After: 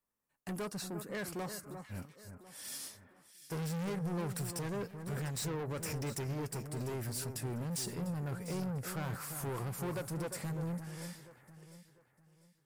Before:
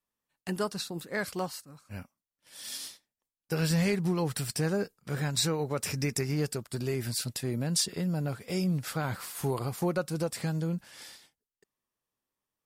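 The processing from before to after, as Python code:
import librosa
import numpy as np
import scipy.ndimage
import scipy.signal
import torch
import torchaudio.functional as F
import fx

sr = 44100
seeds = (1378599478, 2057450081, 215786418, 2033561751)

y = fx.peak_eq(x, sr, hz=3700.0, db=-9.0, octaves=1.2)
y = 10.0 ** (-35.5 / 20.0) * np.tanh(y / 10.0 ** (-35.5 / 20.0))
y = fx.echo_alternate(y, sr, ms=349, hz=1800.0, feedback_pct=55, wet_db=-8)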